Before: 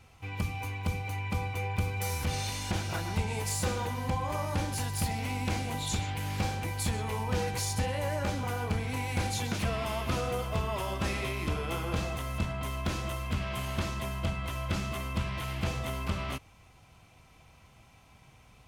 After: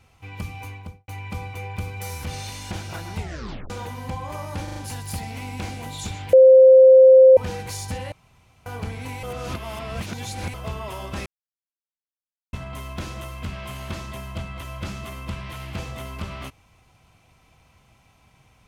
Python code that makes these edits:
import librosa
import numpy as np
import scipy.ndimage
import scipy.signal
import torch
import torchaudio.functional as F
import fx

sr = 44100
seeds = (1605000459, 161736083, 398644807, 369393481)

y = fx.studio_fade_out(x, sr, start_s=0.67, length_s=0.41)
y = fx.edit(y, sr, fx.tape_stop(start_s=3.19, length_s=0.51),
    fx.stutter(start_s=4.64, slice_s=0.04, count=4),
    fx.bleep(start_s=6.21, length_s=1.04, hz=523.0, db=-6.5),
    fx.room_tone_fill(start_s=8.0, length_s=0.54),
    fx.reverse_span(start_s=9.11, length_s=1.31),
    fx.silence(start_s=11.14, length_s=1.27), tone=tone)